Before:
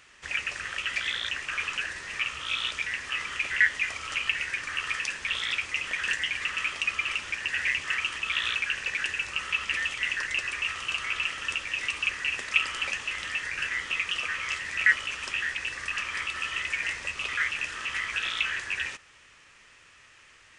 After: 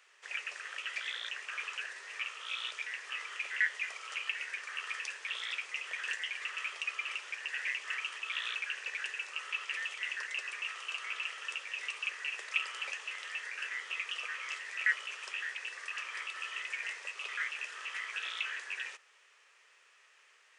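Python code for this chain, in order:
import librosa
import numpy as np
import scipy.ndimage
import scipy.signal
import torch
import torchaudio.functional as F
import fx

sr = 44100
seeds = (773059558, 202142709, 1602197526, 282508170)

y = scipy.signal.sosfilt(scipy.signal.cheby1(4, 1.0, 410.0, 'highpass', fs=sr, output='sos'), x)
y = F.gain(torch.from_numpy(y), -8.0).numpy()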